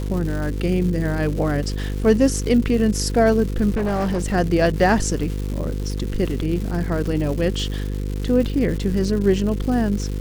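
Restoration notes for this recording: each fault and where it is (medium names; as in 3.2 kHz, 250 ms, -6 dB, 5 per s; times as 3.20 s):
buzz 50 Hz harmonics 10 -25 dBFS
crackle 320 per s -28 dBFS
3.72–4.35 s: clipped -18 dBFS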